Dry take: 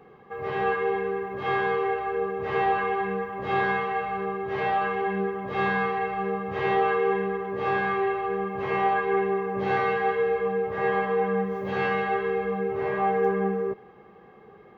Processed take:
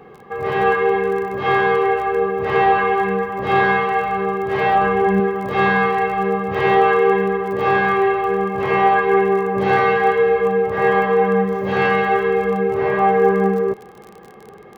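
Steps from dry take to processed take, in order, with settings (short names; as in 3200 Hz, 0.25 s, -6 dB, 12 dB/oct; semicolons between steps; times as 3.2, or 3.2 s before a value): 4.75–5.2 tilt -2 dB/oct; crackle 31/s -39 dBFS; gain +9 dB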